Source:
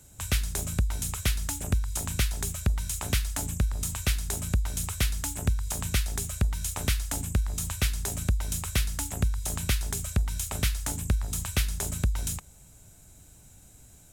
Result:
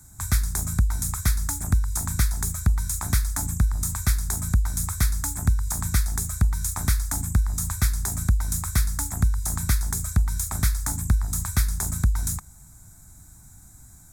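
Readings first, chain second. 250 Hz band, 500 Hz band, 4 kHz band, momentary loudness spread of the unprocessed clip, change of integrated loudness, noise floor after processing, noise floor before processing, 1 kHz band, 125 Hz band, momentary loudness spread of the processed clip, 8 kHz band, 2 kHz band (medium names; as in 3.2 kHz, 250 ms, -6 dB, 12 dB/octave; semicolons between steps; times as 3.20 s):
+3.5 dB, -5.5 dB, -2.5 dB, 2 LU, +4.5 dB, -49 dBFS, -54 dBFS, +4.0 dB, +5.0 dB, 2 LU, +4.0 dB, +1.0 dB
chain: static phaser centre 1.2 kHz, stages 4; trim +5.5 dB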